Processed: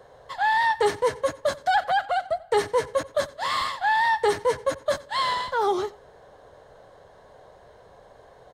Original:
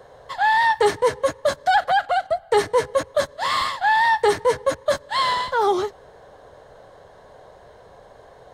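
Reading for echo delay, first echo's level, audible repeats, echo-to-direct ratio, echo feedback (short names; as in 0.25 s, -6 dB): 90 ms, -21.0 dB, 1, -21.0 dB, no steady repeat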